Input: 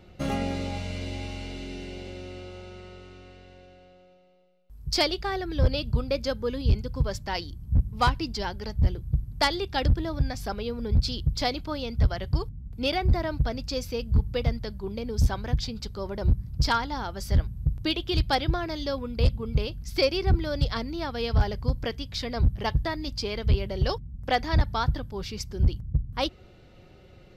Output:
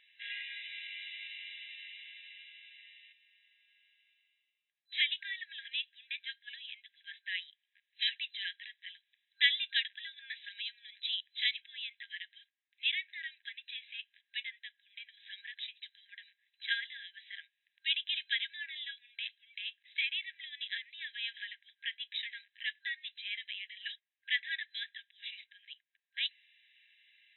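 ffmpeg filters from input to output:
ffmpeg -i in.wav -filter_complex "[0:a]asettb=1/sr,asplit=3[link_01][link_02][link_03];[link_01]atrim=end=3.124[link_04];[link_02]atrim=start=3.12:end=4.9,asetpts=PTS-STARTPTS,afade=type=in:duration=0.004:curve=qsin,afade=type=out:start_time=1.776:duration=0.004:curve=qsin,acompressor=threshold=-52dB:ratio=10:attack=3.2:release=140:knee=1:detection=peak[link_05];[link_03]atrim=start=4.896[link_06];[link_04][link_05]acrossfade=duration=0.004:curve1=hsin:curve2=qsin[link_07];[link_07][link_06]acrossfade=duration=0.004:curve1=qsin:curve2=hsin,asettb=1/sr,asplit=3[link_08][link_09][link_10];[link_08]atrim=end=7.964[link_11];[link_09]atrim=start=7.96:end=11.51,asetpts=PTS-STARTPTS,afade=type=in:duration=0.004:curve=qsin,afade=type=out:start_time=3.546:duration=0.004:curve=qsin,equalizer=frequency=4200:width_type=o:width=1.3:gain=6[link_12];[link_10]atrim=start=11.506[link_13];[link_11][link_12]acrossfade=duration=0.004:curve1=hsin:curve2=qsin[link_14];[link_14][link_13]acrossfade=duration=0.004:curve1=qsin:curve2=hsin,afftfilt=real='re*between(b*sr/4096,1600,4000)':imag='im*between(b*sr/4096,1600,4000)':win_size=4096:overlap=0.75" out.wav

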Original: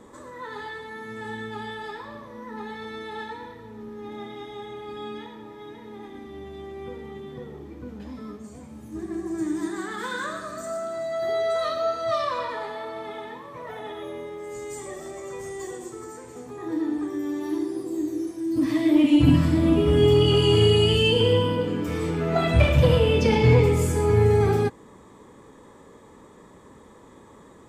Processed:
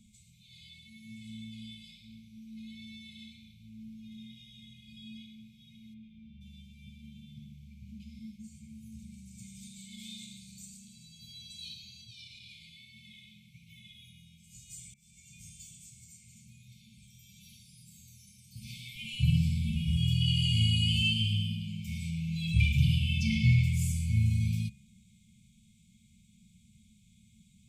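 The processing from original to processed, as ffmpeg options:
ffmpeg -i in.wav -filter_complex "[0:a]asplit=3[link_01][link_02][link_03];[link_01]afade=type=out:start_time=5.93:duration=0.02[link_04];[link_02]lowpass=2200,afade=type=in:start_time=5.93:duration=0.02,afade=type=out:start_time=6.4:duration=0.02[link_05];[link_03]afade=type=in:start_time=6.4:duration=0.02[link_06];[link_04][link_05][link_06]amix=inputs=3:normalize=0,asettb=1/sr,asplit=3[link_07][link_08][link_09];[link_07]atrim=end=11.944[link_10];[link_08]atrim=start=11.94:end=12.46,asetpts=PTS-STARTPTS,afade=type=in:duration=0.004:curve=qsin,afade=type=out:start_time=0.516:duration=0.004:curve=qsin,acompressor=threshold=-27dB:ratio=6:attack=3.2:release=140:knee=1:detection=peak[link_11];[link_09]atrim=start=12.456[link_12];[link_10][link_11]acrossfade=duration=0.004:curve1=hsin:curve2=qsin[link_13];[link_13][link_12]acrossfade=duration=0.004:curve1=qsin:curve2=hsin,asplit=2[link_14][link_15];[link_14]atrim=end=14.94,asetpts=PTS-STARTPTS,afade=type=out:start_time=14.936:duration=0.004:curve=hsin[link_16];[link_15]atrim=start=14.94,asetpts=PTS-STARTPTS,afade=type=in:duration=0.54:curve=qsin[link_17];[link_16][link_17]concat=n=2:v=0:a=1,afftfilt=real='re*(1-between(b*sr/4096,230,2100))':imag='im*(1-between(b*sr/4096,230,2100))':win_size=4096:overlap=0.75,bandreject=frequency=68.49:width_type=h:width=4,bandreject=frequency=136.98:width_type=h:width=4,bandreject=frequency=205.47:width_type=h:width=4,bandreject=frequency=273.96:width_type=h:width=4,bandreject=frequency=342.45:width_type=h:width=4,bandreject=frequency=410.94:width_type=h:width=4,bandreject=frequency=479.43:width_type=h:width=4,bandreject=frequency=547.92:width_type=h:width=4,bandreject=frequency=616.41:width_type=h:width=4,bandreject=frequency=684.9:width_type=h:width=4,bandreject=frequency=753.39:width_type=h:width=4,bandreject=frequency=821.88:width_type=h:width=4,bandreject=frequency=890.37:width_type=h:width=4,bandreject=frequency=958.86:width_type=h:width=4,bandreject=frequency=1027.35:width_type=h:width=4,bandreject=frequency=1095.84:width_type=h:width=4,bandreject=frequency=1164.33:width_type=h:width=4,bandreject=frequency=1232.82:width_type=h:width=4,bandreject=frequency=1301.31:width_type=h:width=4,bandreject=frequency=1369.8:width_type=h:width=4,bandreject=frequency=1438.29:width_type=h:width=4,bandreject=frequency=1506.78:width_type=h:width=4,bandreject=frequency=1575.27:width_type=h:width=4,bandreject=frequency=1643.76:width_type=h:width=4,bandreject=frequency=1712.25:width_type=h:width=4,bandreject=frequency=1780.74:width_type=h:width=4,bandreject=frequency=1849.23:width_type=h:width=4,bandreject=frequency=1917.72:width_type=h:width=4,bandreject=frequency=1986.21:width_type=h:width=4,bandreject=frequency=2054.7:width_type=h:width=4,bandreject=frequency=2123.19:width_type=h:width=4,bandreject=frequency=2191.68:width_type=h:width=4,bandreject=frequency=2260.17:width_type=h:width=4,bandreject=frequency=2328.66:width_type=h:width=4,bandreject=frequency=2397.15:width_type=h:width=4,bandreject=frequency=2465.64:width_type=h:width=4,bandreject=frequency=2534.13:width_type=h:width=4,bandreject=frequency=2602.62:width_type=h:width=4,bandreject=frequency=2671.11:width_type=h:width=4,volume=-5dB" out.wav

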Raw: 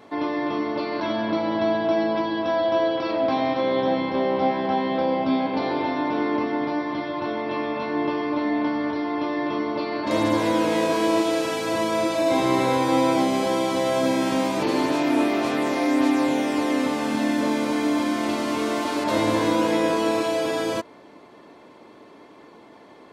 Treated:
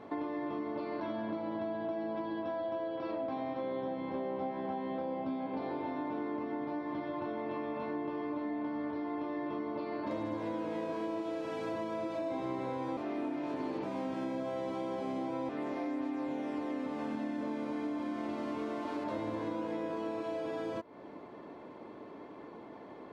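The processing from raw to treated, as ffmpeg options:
ffmpeg -i in.wav -filter_complex "[0:a]asplit=3[link_01][link_02][link_03];[link_01]atrim=end=12.972[link_04];[link_02]atrim=start=12.968:end=15.492,asetpts=PTS-STARTPTS,areverse[link_05];[link_03]atrim=start=15.488[link_06];[link_04][link_05]acrossfade=duration=0.004:curve1=hsin:curve2=hsin[link_07];[link_07][link_06]acrossfade=duration=0.004:curve1=hsin:curve2=hsin,lowpass=frequency=1200:poles=1,acompressor=threshold=-35dB:ratio=6" out.wav

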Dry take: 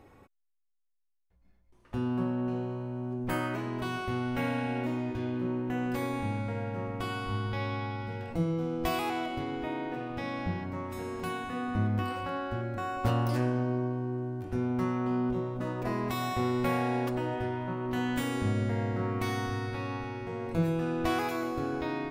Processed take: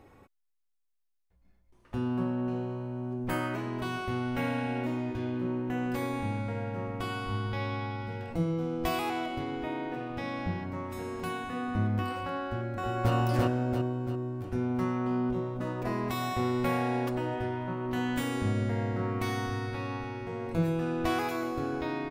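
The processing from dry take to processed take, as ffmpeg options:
ffmpeg -i in.wav -filter_complex "[0:a]asplit=2[link_01][link_02];[link_02]afade=type=in:start_time=12.49:duration=0.01,afade=type=out:start_time=13.13:duration=0.01,aecho=0:1:340|680|1020|1360|1700|2040:0.944061|0.424827|0.191172|0.0860275|0.0387124|0.0174206[link_03];[link_01][link_03]amix=inputs=2:normalize=0" out.wav

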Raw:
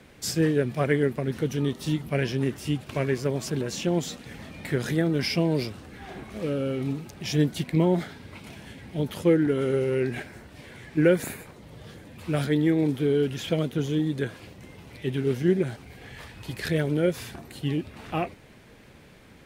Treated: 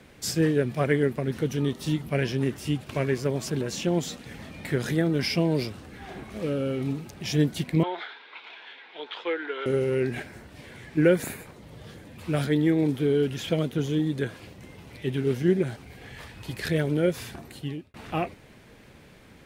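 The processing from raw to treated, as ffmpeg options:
ffmpeg -i in.wav -filter_complex "[0:a]asettb=1/sr,asplit=3[link_01][link_02][link_03];[link_01]atrim=end=7.834[link_04];[link_02]atrim=start=7.83:end=9.66,asetpts=PTS-STARTPTS,afade=type=in:duration=0.004:curve=qsin,afade=type=out:start_time=1.826:duration=0.004:curve=qsin,highpass=frequency=490:width=0.5412,highpass=frequency=490:width=1.3066,equalizer=frequency=580:width_type=q:width=4:gain=-10,equalizer=frequency=990:width_type=q:width=4:gain=4,equalizer=frequency=1500:width_type=q:width=4:gain=5,equalizer=frequency=2400:width_type=q:width=4:gain=4,equalizer=frequency=3600:width_type=q:width=4:gain=8,lowpass=frequency=3900:width=0.5412,lowpass=frequency=3900:width=1.3066[link_05];[link_03]atrim=start=9.656[link_06];[link_04][link_05]acrossfade=duration=0.004:curve1=hsin:curve2=qsin[link_07];[link_07][link_06]acrossfade=duration=0.004:curve1=qsin:curve2=hsin,asplit=2[link_08][link_09];[link_08]atrim=end=17.94,asetpts=PTS-STARTPTS,afade=type=out:start_time=17.47:duration=0.47[link_10];[link_09]atrim=start=17.94,asetpts=PTS-STARTPTS,afade=type=in:duration=0.004:curve=hsin[link_11];[link_10][link_11]concat=n=2:v=0:a=1" out.wav

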